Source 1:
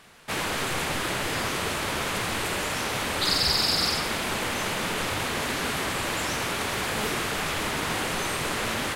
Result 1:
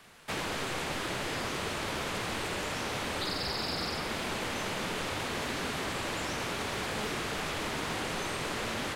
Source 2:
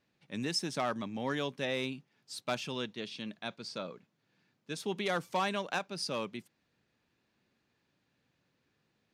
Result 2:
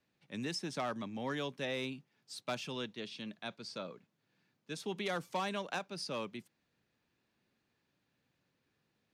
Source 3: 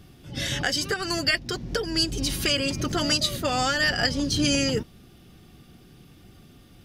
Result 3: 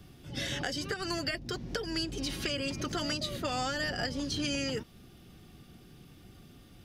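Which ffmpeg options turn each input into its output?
-filter_complex "[0:a]acrossover=split=210|790|3600|7300[a][b][c][d][e];[a]acompressor=threshold=-38dB:ratio=4[f];[b]acompressor=threshold=-33dB:ratio=4[g];[c]acompressor=threshold=-34dB:ratio=4[h];[d]acompressor=threshold=-40dB:ratio=4[i];[e]acompressor=threshold=-51dB:ratio=4[j];[f][g][h][i][j]amix=inputs=5:normalize=0,volume=-3dB"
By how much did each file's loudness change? -7.0, -4.0, -9.5 LU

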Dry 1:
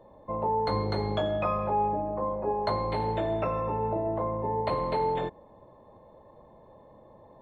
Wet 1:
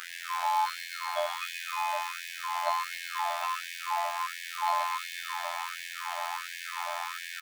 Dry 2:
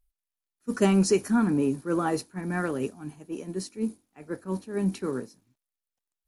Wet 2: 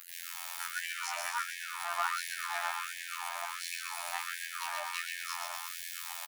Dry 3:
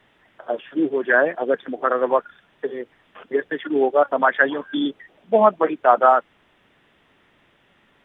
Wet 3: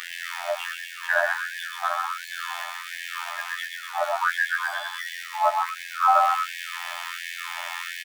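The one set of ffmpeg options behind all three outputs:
-filter_complex "[0:a]aeval=exprs='val(0)+0.5*0.0891*sgn(val(0))':c=same,acrossover=split=3100[a][b];[b]acompressor=threshold=-36dB:ratio=4:attack=1:release=60[c];[a][c]amix=inputs=2:normalize=0,afftfilt=real='hypot(re,im)*cos(PI*b)':imag='0':win_size=2048:overlap=0.75,aecho=1:1:130|247|352.3|447.1|532.4:0.631|0.398|0.251|0.158|0.1,afftfilt=real='re*gte(b*sr/1024,570*pow(1600/570,0.5+0.5*sin(2*PI*1.4*pts/sr)))':imag='im*gte(b*sr/1024,570*pow(1600/570,0.5+0.5*sin(2*PI*1.4*pts/sr)))':win_size=1024:overlap=0.75,volume=-2dB"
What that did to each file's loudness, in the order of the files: -3.5, -8.5, -6.5 LU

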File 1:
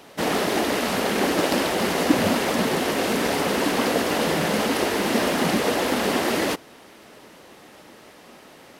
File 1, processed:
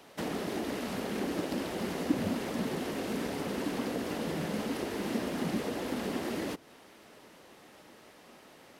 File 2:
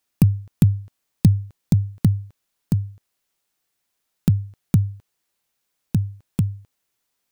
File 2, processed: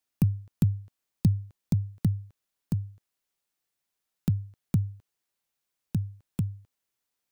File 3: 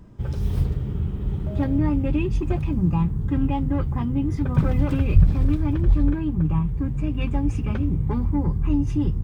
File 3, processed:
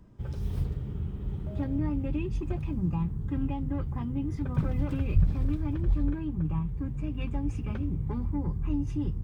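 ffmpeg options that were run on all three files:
-filter_complex "[0:a]acrossover=split=380[a][b];[b]acompressor=threshold=-30dB:ratio=6[c];[a][c]amix=inputs=2:normalize=0,volume=-8dB"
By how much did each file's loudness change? -12.0, -8.0, -8.0 LU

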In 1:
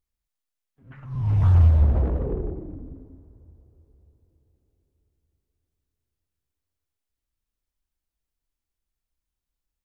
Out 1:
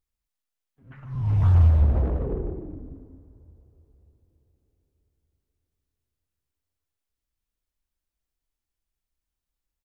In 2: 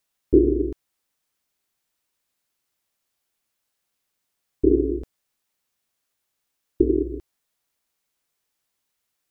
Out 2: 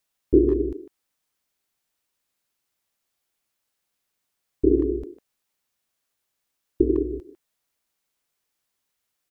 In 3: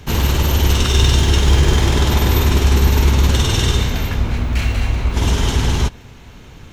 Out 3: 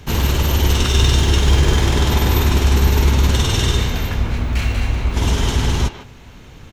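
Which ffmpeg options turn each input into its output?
-filter_complex "[0:a]asplit=2[a][b];[b]adelay=150,highpass=300,lowpass=3.4k,asoftclip=type=hard:threshold=-10dB,volume=-10dB[c];[a][c]amix=inputs=2:normalize=0,volume=-1dB"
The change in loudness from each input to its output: -1.0, -1.0, -1.0 LU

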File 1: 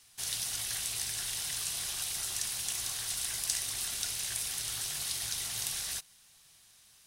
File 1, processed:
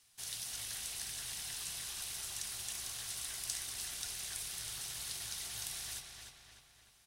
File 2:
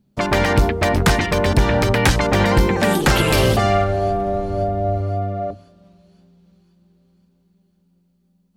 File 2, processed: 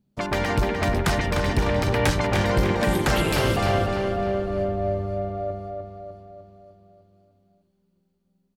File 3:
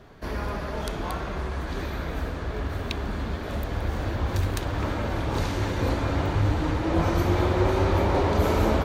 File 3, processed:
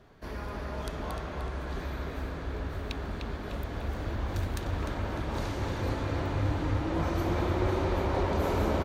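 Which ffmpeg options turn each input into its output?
-filter_complex "[0:a]asplit=2[a][b];[b]adelay=301,lowpass=f=4.3k:p=1,volume=-4dB,asplit=2[c][d];[d]adelay=301,lowpass=f=4.3k:p=1,volume=0.55,asplit=2[e][f];[f]adelay=301,lowpass=f=4.3k:p=1,volume=0.55,asplit=2[g][h];[h]adelay=301,lowpass=f=4.3k:p=1,volume=0.55,asplit=2[i][j];[j]adelay=301,lowpass=f=4.3k:p=1,volume=0.55,asplit=2[k][l];[l]adelay=301,lowpass=f=4.3k:p=1,volume=0.55,asplit=2[m][n];[n]adelay=301,lowpass=f=4.3k:p=1,volume=0.55[o];[a][c][e][g][i][k][m][o]amix=inputs=8:normalize=0,volume=-7.5dB"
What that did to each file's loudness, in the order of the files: -7.0, -6.0, -6.0 LU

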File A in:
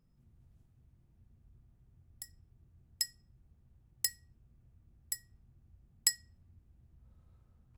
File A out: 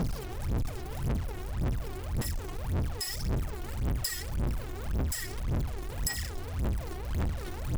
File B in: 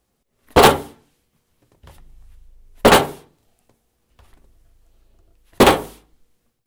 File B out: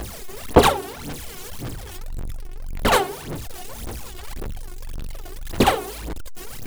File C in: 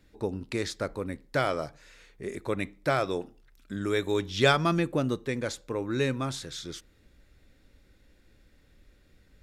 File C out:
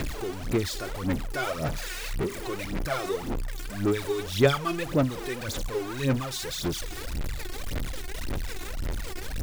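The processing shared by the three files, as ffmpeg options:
-af "aeval=exprs='val(0)+0.5*0.0668*sgn(val(0))':c=same,aphaser=in_gain=1:out_gain=1:delay=2.8:decay=0.74:speed=1.8:type=sinusoidal,volume=-9.5dB"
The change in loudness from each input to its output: +2.0, -8.0, -0.5 LU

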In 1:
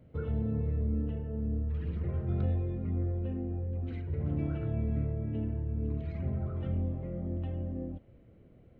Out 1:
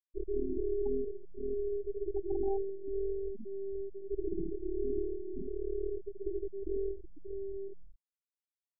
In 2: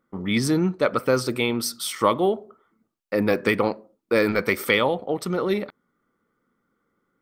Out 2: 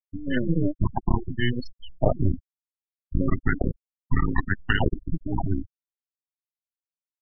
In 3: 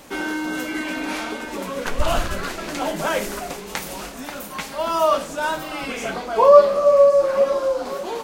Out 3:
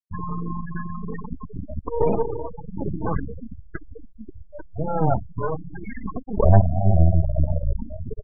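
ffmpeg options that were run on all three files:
-filter_complex "[0:a]afreqshift=-480,asplit=2[a][b];[b]acontrast=83,volume=-1dB[c];[a][c]amix=inputs=2:normalize=0,aeval=exprs='max(val(0),0)':c=same,acrusher=bits=10:mix=0:aa=0.000001,afftfilt=real='re*gte(hypot(re,im),0.282)':imag='im*gte(hypot(re,im),0.282)':win_size=1024:overlap=0.75,aresample=11025,aresample=44100,volume=-6.5dB"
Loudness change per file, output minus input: -4.0, -4.5, -4.5 LU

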